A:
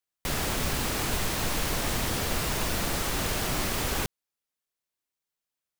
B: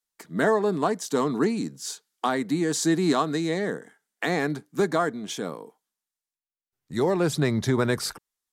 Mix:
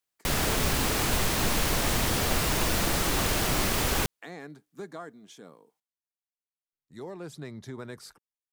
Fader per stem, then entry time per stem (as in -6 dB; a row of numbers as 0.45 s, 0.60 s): +2.5 dB, -17.0 dB; 0.00 s, 0.00 s